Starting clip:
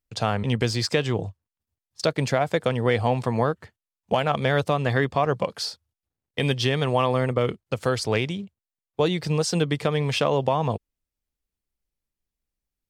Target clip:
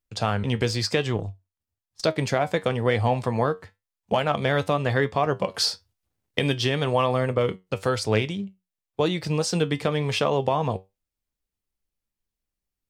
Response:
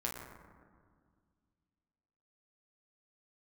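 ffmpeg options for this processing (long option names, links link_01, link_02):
-filter_complex "[0:a]flanger=delay=9.2:depth=1.7:regen=70:speed=0.98:shape=triangular,asettb=1/sr,asplit=3[link_01][link_02][link_03];[link_01]atrim=end=1.164[link_04];[link_02]atrim=start=1.16:end=2.03,asetpts=PTS-STARTPTS,afade=type=in:duration=0.004:curve=qsin,afade=type=out:start_time=0.866:duration=0.004:curve=qsin,aeval=exprs='0.158*(cos(1*acos(clip(val(0)/0.158,-1,1)))-cos(1*PI/2))+0.0141*(cos(3*acos(clip(val(0)/0.158,-1,1)))-cos(3*PI/2))+0.00562*(cos(6*acos(clip(val(0)/0.158,-1,1)))-cos(6*PI/2))':channel_layout=same[link_05];[link_03]atrim=start=2.026[link_06];[link_04][link_05]acrossfade=duration=0.004:curve1=hsin:curve2=qsin[link_07];[link_07][link_06]acrossfade=duration=0.004:curve1=qsin:curve2=hsin,asettb=1/sr,asplit=3[link_08][link_09][link_10];[link_08]atrim=end=5.544[link_11];[link_09]atrim=start=5.54:end=6.39,asetpts=PTS-STARTPTS,afade=type=in:duration=0.004:curve=qsin,afade=type=out:start_time=0.846:duration=0.004:curve=qsin,acontrast=78[link_12];[link_10]atrim=start=6.386[link_13];[link_11][link_12]acrossfade=duration=0.004:curve1=hsin:curve2=qsin[link_14];[link_14][link_13]acrossfade=duration=0.004:curve1=qsin:curve2=hsin,volume=4dB"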